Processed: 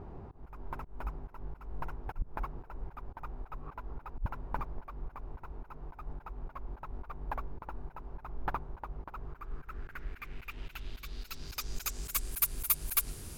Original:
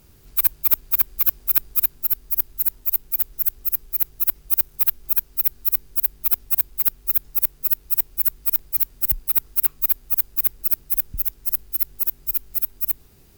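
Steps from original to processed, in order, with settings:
played backwards from end to start
low-pass filter sweep 920 Hz → 10,000 Hz, 0:09.08–0:12.41
volume swells 191 ms
level +7.5 dB

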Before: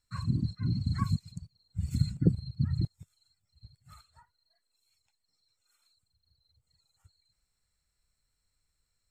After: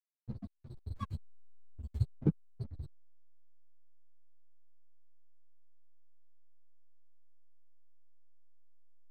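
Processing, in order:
spectral dynamics exaggerated over time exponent 3
slack as between gear wheels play −35 dBFS
string-ensemble chorus
level +3 dB

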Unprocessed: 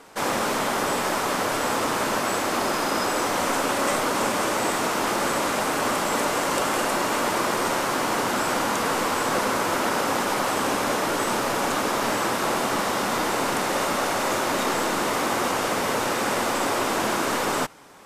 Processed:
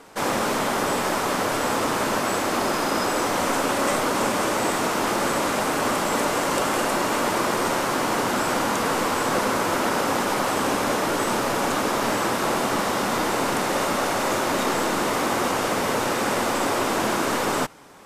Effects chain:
low-shelf EQ 480 Hz +3 dB

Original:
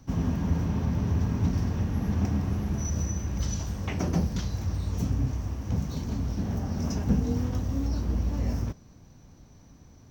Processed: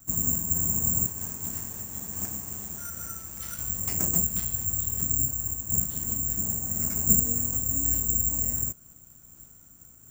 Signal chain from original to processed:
0:01.06–0:03.59: low-shelf EQ 310 Hz −11.5 dB
bad sample-rate conversion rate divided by 6×, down none, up zero stuff
amplitude modulation by smooth noise, depth 55%
level −5 dB

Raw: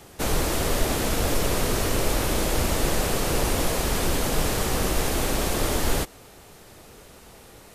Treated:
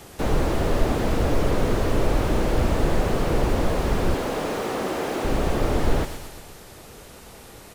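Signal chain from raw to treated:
0:04.14–0:05.25: high-pass filter 270 Hz 12 dB per octave
on a send: repeating echo 120 ms, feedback 59%, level −15 dB
on the sum: slew-rate limiting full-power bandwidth 42 Hz
level +3.5 dB

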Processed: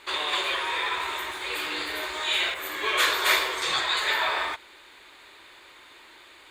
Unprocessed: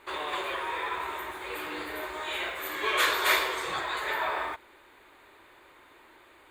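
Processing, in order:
parametric band 4,800 Hz +14 dB 2.2 octaves, from 0:02.54 +5 dB, from 0:03.62 +14.5 dB

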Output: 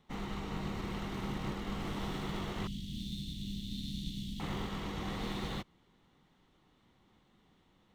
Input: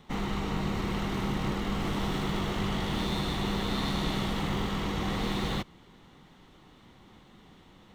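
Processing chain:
0:02.67–0:04.40: elliptic band-stop filter 240–3,300 Hz, stop band 80 dB
expander for the loud parts 1.5 to 1, over −41 dBFS
level −6.5 dB

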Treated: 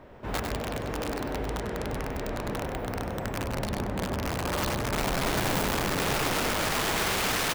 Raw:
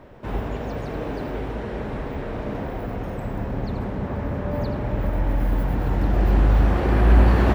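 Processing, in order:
low-shelf EQ 450 Hz −3 dB
wrap-around overflow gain 21.5 dB
single-tap delay 97 ms −7 dB
level −2 dB

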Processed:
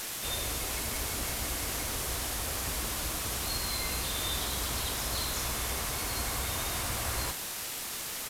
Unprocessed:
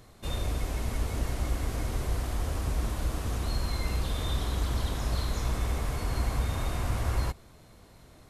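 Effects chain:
spectral tilt +2.5 dB per octave
bit-depth reduction 6 bits, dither triangular
downsampling to 32,000 Hz

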